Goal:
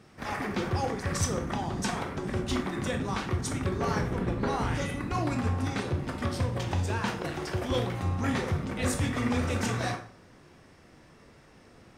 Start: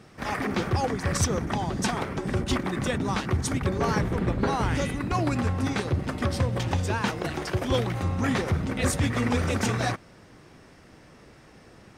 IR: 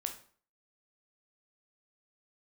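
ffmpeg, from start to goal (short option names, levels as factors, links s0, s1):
-filter_complex "[1:a]atrim=start_sample=2205[s0];[0:a][s0]afir=irnorm=-1:irlink=0,volume=0.668"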